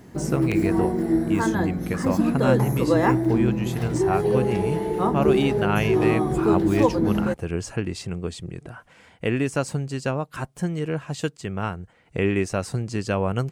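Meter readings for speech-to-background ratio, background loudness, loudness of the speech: −4.5 dB, −23.0 LKFS, −27.5 LKFS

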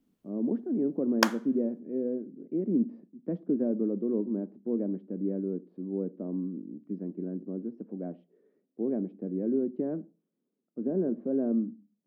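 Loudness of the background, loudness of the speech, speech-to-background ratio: −30.0 LKFS, −32.0 LKFS, −2.0 dB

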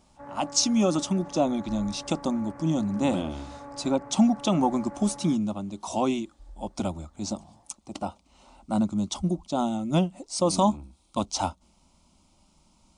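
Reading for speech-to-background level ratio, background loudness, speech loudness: 16.0 dB, −43.0 LKFS, −27.0 LKFS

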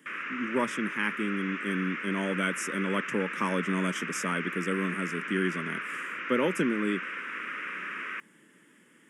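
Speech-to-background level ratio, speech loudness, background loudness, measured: 3.5 dB, −31.5 LKFS, −35.0 LKFS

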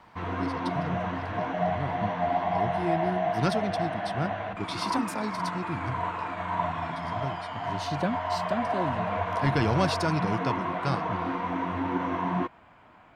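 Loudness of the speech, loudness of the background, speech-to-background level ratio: −33.5 LKFS, −30.5 LKFS, −3.0 dB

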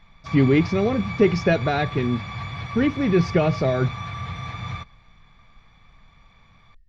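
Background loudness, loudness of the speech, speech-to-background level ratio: −32.0 LKFS, −22.0 LKFS, 10.0 dB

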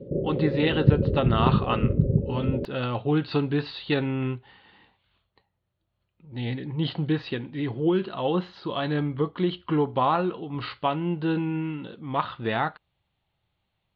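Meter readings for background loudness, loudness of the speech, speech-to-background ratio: −25.0 LKFS, −27.5 LKFS, −2.5 dB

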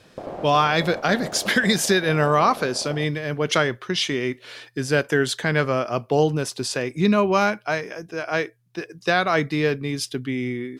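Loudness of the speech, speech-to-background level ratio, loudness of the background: −22.0 LKFS, 14.5 dB, −36.5 LKFS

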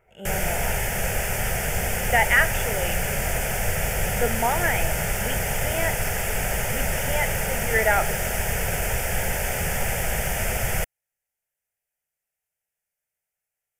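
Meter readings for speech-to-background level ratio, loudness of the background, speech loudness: −0.5 dB, −25.5 LKFS, −26.0 LKFS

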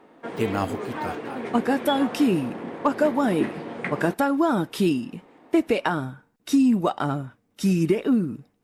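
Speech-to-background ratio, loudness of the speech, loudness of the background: 9.0 dB, −24.0 LKFS, −33.0 LKFS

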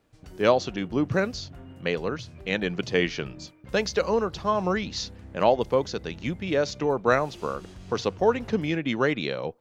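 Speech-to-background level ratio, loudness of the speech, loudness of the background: 19.5 dB, −26.5 LKFS, −46.0 LKFS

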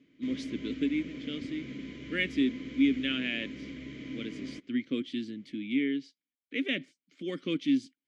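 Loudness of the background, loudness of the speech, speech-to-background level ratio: −42.0 LKFS, −32.5 LKFS, 9.5 dB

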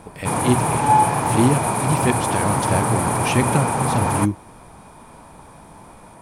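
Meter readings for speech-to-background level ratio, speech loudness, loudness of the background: −4.0 dB, −24.0 LKFS, −20.0 LKFS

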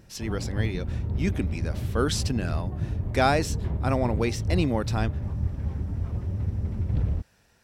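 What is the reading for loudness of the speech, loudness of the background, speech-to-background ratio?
−29.0 LKFS, −30.5 LKFS, 1.5 dB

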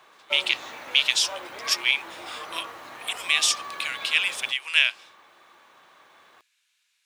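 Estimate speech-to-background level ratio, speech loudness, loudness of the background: 14.5 dB, −23.5 LKFS, −38.0 LKFS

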